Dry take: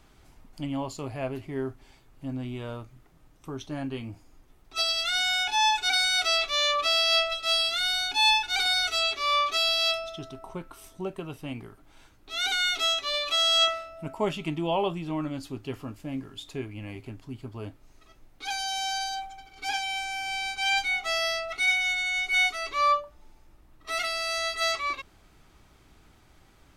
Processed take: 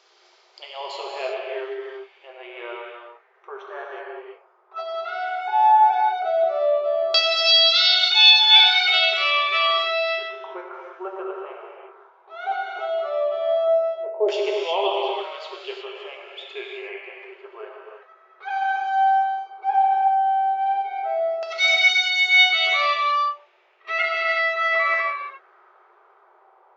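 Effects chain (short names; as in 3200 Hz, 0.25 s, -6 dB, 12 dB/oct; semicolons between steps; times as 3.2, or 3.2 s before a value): LFO low-pass saw down 0.14 Hz 510–5200 Hz; non-linear reverb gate 0.39 s flat, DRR -1.5 dB; FFT band-pass 350–7600 Hz; gain +1.5 dB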